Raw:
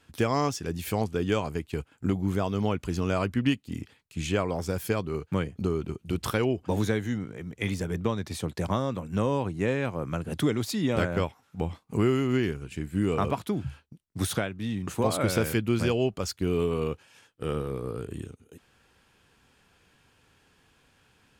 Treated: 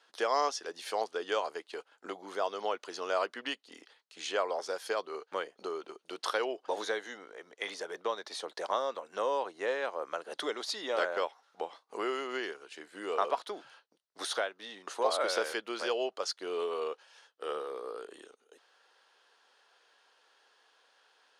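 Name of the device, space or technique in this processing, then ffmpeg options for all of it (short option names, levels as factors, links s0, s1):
phone speaker on a table: -af "highpass=f=490:w=0.5412,highpass=f=490:w=1.3066,equalizer=f=2400:t=q:w=4:g=-8,equalizer=f=4200:t=q:w=4:g=3,equalizer=f=7600:t=q:w=4:g=-10,lowpass=f=8700:w=0.5412,lowpass=f=8700:w=1.3066"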